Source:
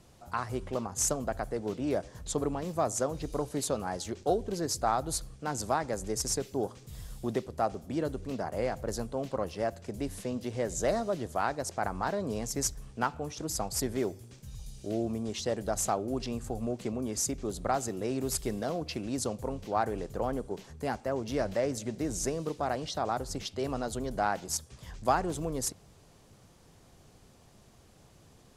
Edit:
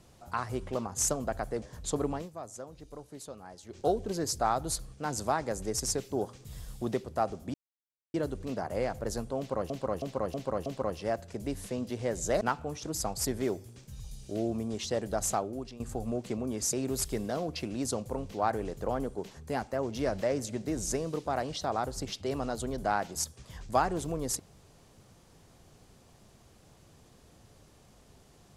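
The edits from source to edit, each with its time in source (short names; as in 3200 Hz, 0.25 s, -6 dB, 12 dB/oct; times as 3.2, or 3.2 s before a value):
1.62–2.04 cut
2.59–4.22 dip -13 dB, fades 0.12 s
7.96 insert silence 0.60 s
9.2–9.52 loop, 5 plays
10.95–12.96 cut
15.87–16.35 fade out, to -15.5 dB
17.28–18.06 cut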